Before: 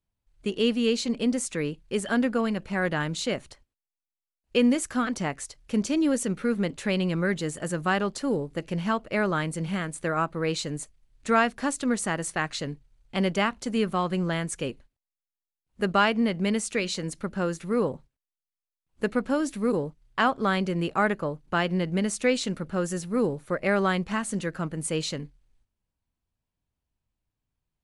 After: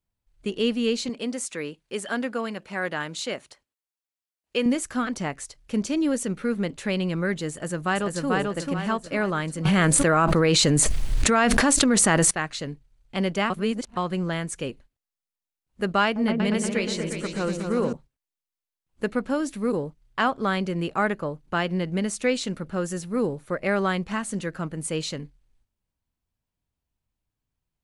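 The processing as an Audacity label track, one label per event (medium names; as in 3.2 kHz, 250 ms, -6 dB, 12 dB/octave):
1.090000	4.660000	high-pass 400 Hz 6 dB/octave
7.510000	8.290000	echo throw 440 ms, feedback 40%, level -1.5 dB
9.650000	12.310000	level flattener amount 100%
13.500000	13.970000	reverse
16.040000	17.930000	delay with an opening low-pass 119 ms, low-pass from 400 Hz, each repeat up 2 oct, level -3 dB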